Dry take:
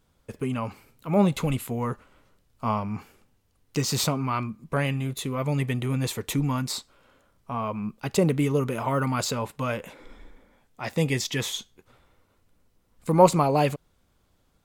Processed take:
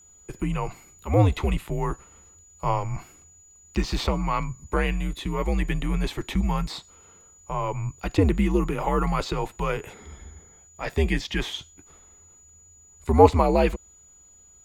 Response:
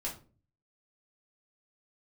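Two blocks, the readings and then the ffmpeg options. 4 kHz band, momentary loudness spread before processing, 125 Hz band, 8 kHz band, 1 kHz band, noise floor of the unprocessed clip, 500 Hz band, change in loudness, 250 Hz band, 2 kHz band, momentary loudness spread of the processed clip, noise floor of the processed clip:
-2.0 dB, 12 LU, +0.5 dB, -7.0 dB, +1.5 dB, -67 dBFS, +1.0 dB, +1.0 dB, 0.0 dB, +1.5 dB, 15 LU, -54 dBFS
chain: -filter_complex "[0:a]afreqshift=-88,aeval=exprs='val(0)+0.00224*sin(2*PI*6900*n/s)':c=same,acrossover=split=4100[s0][s1];[s1]acompressor=threshold=0.00316:ratio=4:attack=1:release=60[s2];[s0][s2]amix=inputs=2:normalize=0,volume=1.26"

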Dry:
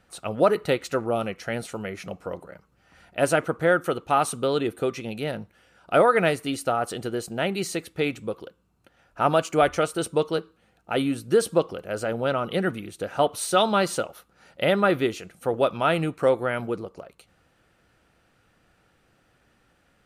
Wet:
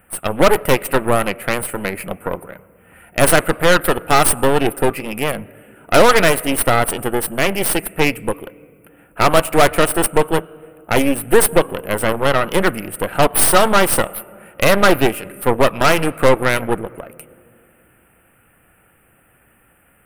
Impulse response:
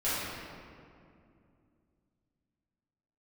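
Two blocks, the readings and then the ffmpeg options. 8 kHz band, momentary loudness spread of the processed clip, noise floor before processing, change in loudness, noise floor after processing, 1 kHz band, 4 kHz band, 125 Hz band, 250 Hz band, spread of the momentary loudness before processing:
+15.5 dB, 12 LU, -65 dBFS, +8.5 dB, -55 dBFS, +8.5 dB, +10.0 dB, +8.5 dB, +7.5 dB, 13 LU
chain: -filter_complex "[0:a]asuperstop=centerf=5100:order=8:qfactor=0.82,aemphasis=mode=production:type=75kf,acontrast=84,asplit=2[s0][s1];[1:a]atrim=start_sample=2205,adelay=93[s2];[s1][s2]afir=irnorm=-1:irlink=0,volume=0.0299[s3];[s0][s3]amix=inputs=2:normalize=0,aeval=exprs='0.75*(cos(1*acos(clip(val(0)/0.75,-1,1)))-cos(1*PI/2))+0.188*(cos(6*acos(clip(val(0)/0.75,-1,1)))-cos(6*PI/2))':c=same"

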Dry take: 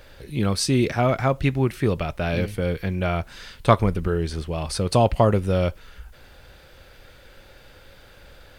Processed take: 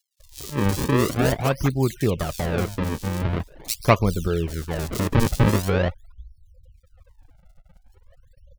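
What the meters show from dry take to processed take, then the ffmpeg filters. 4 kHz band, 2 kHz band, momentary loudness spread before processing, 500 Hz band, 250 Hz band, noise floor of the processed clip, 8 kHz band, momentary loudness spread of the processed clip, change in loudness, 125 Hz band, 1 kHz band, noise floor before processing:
-1.5 dB, +1.5 dB, 8 LU, -2.0 dB, +0.5 dB, -59 dBFS, +1.5 dB, 9 LU, -0.5 dB, +0.5 dB, -2.0 dB, -50 dBFS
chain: -filter_complex "[0:a]afftfilt=real='re*gte(hypot(re,im),0.02)':imag='im*gte(hypot(re,im),0.02)':win_size=1024:overlap=0.75,acrusher=samples=36:mix=1:aa=0.000001:lfo=1:lforange=57.6:lforate=0.44,acrossover=split=3700[s0][s1];[s0]adelay=200[s2];[s2][s1]amix=inputs=2:normalize=0"

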